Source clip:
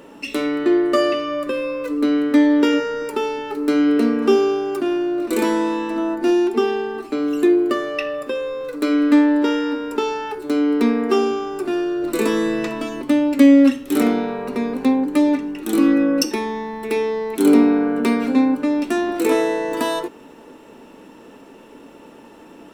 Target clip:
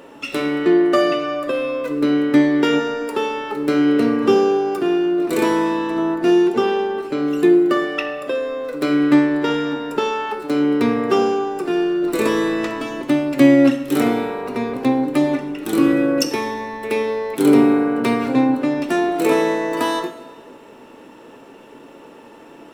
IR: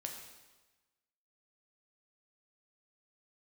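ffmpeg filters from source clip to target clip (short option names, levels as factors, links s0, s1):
-filter_complex "[0:a]asplit=3[s0][s1][s2];[s1]asetrate=22050,aresample=44100,atempo=2,volume=0.2[s3];[s2]asetrate=55563,aresample=44100,atempo=0.793701,volume=0.126[s4];[s0][s3][s4]amix=inputs=3:normalize=0,bass=f=250:g=-7,treble=f=4000:g=-3,asplit=2[s5][s6];[1:a]atrim=start_sample=2205[s7];[s6][s7]afir=irnorm=-1:irlink=0,volume=1.12[s8];[s5][s8]amix=inputs=2:normalize=0,volume=0.708"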